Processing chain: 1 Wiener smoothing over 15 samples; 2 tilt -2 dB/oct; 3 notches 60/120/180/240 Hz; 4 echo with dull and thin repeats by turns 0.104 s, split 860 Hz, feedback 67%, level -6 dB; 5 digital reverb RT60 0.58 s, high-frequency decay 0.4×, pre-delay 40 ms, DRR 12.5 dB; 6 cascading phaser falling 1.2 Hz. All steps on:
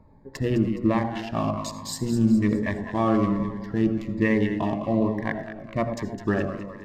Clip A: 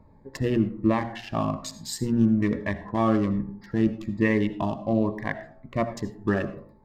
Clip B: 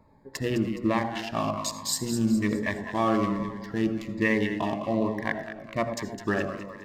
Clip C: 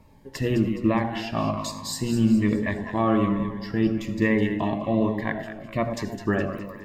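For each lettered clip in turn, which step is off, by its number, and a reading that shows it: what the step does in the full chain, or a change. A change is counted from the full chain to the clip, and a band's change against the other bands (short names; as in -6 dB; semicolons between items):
4, momentary loudness spread change +1 LU; 2, 8 kHz band +7.0 dB; 1, 4 kHz band +3.0 dB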